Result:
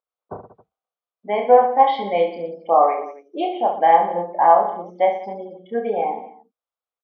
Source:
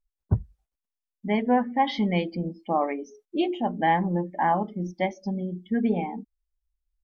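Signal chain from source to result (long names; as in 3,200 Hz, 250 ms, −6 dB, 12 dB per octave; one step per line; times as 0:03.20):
loudspeaker in its box 490–3,400 Hz, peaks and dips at 490 Hz +10 dB, 710 Hz +8 dB, 1,200 Hz +8 dB, 1,800 Hz −8 dB, 2,700 Hz −6 dB
reverse bouncing-ball delay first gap 30 ms, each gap 1.3×, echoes 5
level +3 dB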